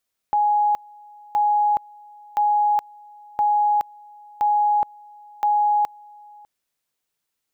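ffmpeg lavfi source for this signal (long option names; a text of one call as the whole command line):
ffmpeg -f lavfi -i "aevalsrc='pow(10,(-15.5-26.5*gte(mod(t,1.02),0.42))/20)*sin(2*PI*833*t)':duration=6.12:sample_rate=44100" out.wav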